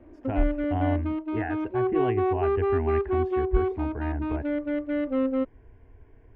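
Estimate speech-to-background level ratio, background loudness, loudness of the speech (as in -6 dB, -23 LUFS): -4.0 dB, -28.0 LUFS, -32.0 LUFS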